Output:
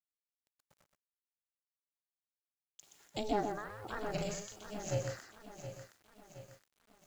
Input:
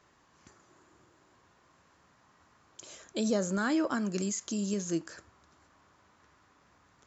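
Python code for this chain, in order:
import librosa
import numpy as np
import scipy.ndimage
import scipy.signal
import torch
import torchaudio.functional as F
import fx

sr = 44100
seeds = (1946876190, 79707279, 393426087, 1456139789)

p1 = fx.env_lowpass_down(x, sr, base_hz=2500.0, full_db=-26.0)
p2 = scipy.signal.sosfilt(scipy.signal.butter(2, 390.0, 'highpass', fs=sr, output='sos'), p1)
p3 = fx.noise_reduce_blind(p2, sr, reduce_db=17)
p4 = fx.rider(p3, sr, range_db=3, speed_s=0.5)
p5 = p3 + (p4 * librosa.db_to_amplitude(-3.0))
p6 = p5 * (1.0 - 0.9 / 2.0 + 0.9 / 2.0 * np.cos(2.0 * np.pi * 1.2 * (np.arange(len(p5)) / sr)))
p7 = fx.quant_dither(p6, sr, seeds[0], bits=10, dither='none')
p8 = p7 * np.sin(2.0 * np.pi * 210.0 * np.arange(len(p7)) / sr)
p9 = fx.doubler(p8, sr, ms=39.0, db=-6, at=(4.02, 5.1))
p10 = p9 + fx.echo_single(p9, sr, ms=124, db=-6.5, dry=0)
p11 = fx.echo_crushed(p10, sr, ms=718, feedback_pct=55, bits=9, wet_db=-11.0)
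y = p11 * librosa.db_to_amplitude(-1.5)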